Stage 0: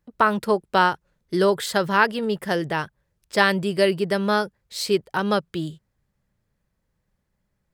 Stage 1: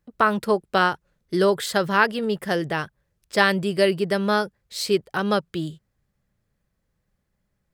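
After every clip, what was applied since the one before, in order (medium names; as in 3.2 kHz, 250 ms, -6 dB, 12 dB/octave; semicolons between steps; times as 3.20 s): band-stop 930 Hz, Q 13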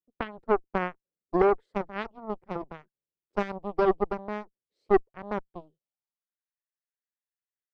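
band-pass sweep 350 Hz -> 1.8 kHz, 5.52–6.46 s; Chebyshev shaper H 2 -8 dB, 6 -20 dB, 7 -16 dB, 8 -28 dB, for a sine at -11 dBFS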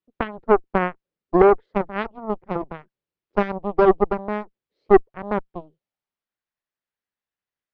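distance through air 210 m; trim +8.5 dB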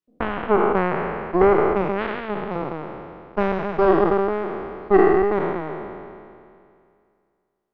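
spectral sustain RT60 2.33 s; trim -4 dB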